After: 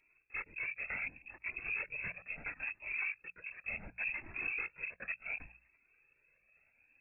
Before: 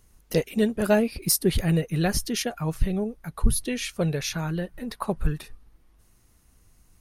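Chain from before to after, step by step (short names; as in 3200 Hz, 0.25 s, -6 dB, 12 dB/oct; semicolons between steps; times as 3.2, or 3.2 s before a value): minimum comb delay 0.32 ms; tilt shelf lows -4 dB, about 840 Hz; reverse; compressor 16:1, threshold -33 dBFS, peak gain reduction 19 dB; reverse; air absorption 270 m; notch comb 1500 Hz; LPC vocoder at 8 kHz whisper; wavefolder -32.5 dBFS; inverted band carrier 2600 Hz; de-hum 58.89 Hz, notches 3; cascading flanger rising 0.7 Hz; gain +3.5 dB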